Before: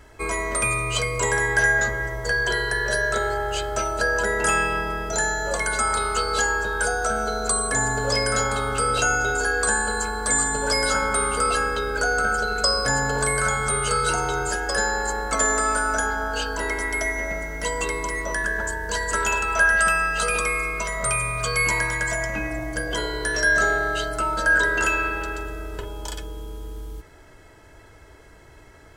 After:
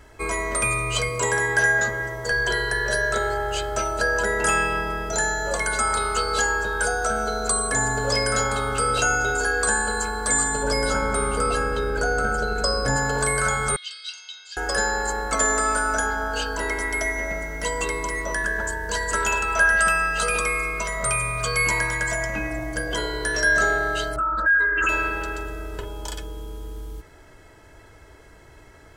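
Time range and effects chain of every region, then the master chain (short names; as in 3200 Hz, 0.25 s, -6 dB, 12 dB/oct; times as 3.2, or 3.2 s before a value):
1.09–2.31 HPF 87 Hz + notch 2100 Hz, Q 16
10.63–12.96 tilt shelf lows +4.5 dB, about 680 Hz + frequency-shifting echo 0.213 s, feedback 43%, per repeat +100 Hz, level -21.5 dB
13.76–14.57 Butterworth band-pass 3800 Hz, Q 2 + comb 1.9 ms, depth 56%
24.16–24.89 spectral contrast raised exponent 2 + bell 150 Hz +12.5 dB 1.8 oct + Doppler distortion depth 0.16 ms
whole clip: dry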